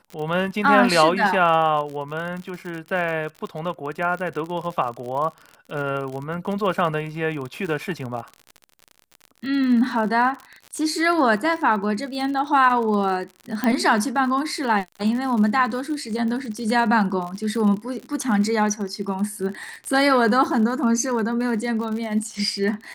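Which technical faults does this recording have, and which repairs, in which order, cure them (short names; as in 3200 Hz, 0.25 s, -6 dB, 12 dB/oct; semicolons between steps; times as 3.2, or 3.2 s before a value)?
crackle 51/s -29 dBFS
13.64 pop -9 dBFS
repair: de-click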